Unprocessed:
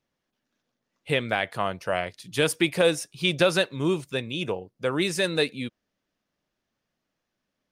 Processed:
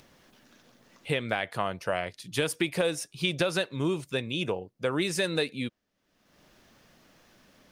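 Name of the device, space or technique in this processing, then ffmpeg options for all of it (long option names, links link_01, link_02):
upward and downward compression: -af "acompressor=mode=upward:threshold=-41dB:ratio=2.5,acompressor=threshold=-24dB:ratio=4"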